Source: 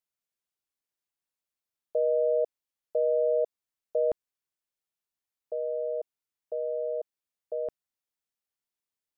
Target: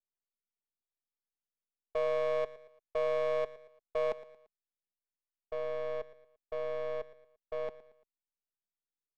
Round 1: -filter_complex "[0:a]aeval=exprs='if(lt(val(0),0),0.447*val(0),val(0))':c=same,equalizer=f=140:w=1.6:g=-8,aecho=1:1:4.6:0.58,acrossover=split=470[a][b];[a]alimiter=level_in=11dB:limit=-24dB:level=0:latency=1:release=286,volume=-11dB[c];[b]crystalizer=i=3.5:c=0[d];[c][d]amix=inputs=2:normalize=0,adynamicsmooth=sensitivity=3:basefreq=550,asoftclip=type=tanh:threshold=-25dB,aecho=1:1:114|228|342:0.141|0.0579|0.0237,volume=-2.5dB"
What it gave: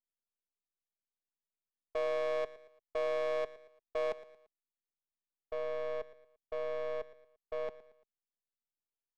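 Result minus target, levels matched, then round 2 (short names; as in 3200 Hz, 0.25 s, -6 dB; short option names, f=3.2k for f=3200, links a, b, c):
soft clip: distortion +18 dB
-filter_complex "[0:a]aeval=exprs='if(lt(val(0),0),0.447*val(0),val(0))':c=same,equalizer=f=140:w=1.6:g=-8,aecho=1:1:4.6:0.58,acrossover=split=470[a][b];[a]alimiter=level_in=11dB:limit=-24dB:level=0:latency=1:release=286,volume=-11dB[c];[b]crystalizer=i=3.5:c=0[d];[c][d]amix=inputs=2:normalize=0,adynamicsmooth=sensitivity=3:basefreq=550,asoftclip=type=tanh:threshold=-14.5dB,aecho=1:1:114|228|342:0.141|0.0579|0.0237,volume=-2.5dB"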